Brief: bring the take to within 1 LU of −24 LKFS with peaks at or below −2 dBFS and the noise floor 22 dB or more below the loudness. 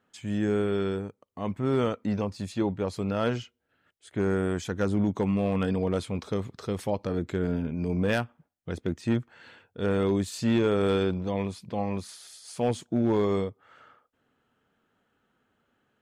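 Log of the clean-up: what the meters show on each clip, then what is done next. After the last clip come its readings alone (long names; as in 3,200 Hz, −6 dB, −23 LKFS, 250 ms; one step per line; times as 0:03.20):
share of clipped samples 0.3%; peaks flattened at −16.5 dBFS; integrated loudness −28.5 LKFS; sample peak −16.5 dBFS; target loudness −24.0 LKFS
→ clipped peaks rebuilt −16.5 dBFS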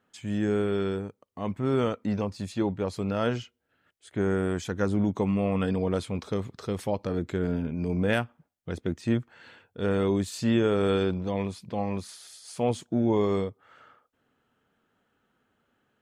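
share of clipped samples 0.0%; integrated loudness −28.5 LKFS; sample peak −11.0 dBFS; target loudness −24.0 LKFS
→ level +4.5 dB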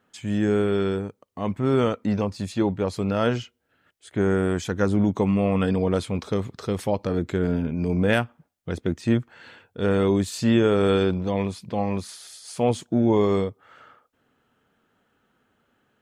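integrated loudness −24.0 LKFS; sample peak −6.5 dBFS; background noise floor −70 dBFS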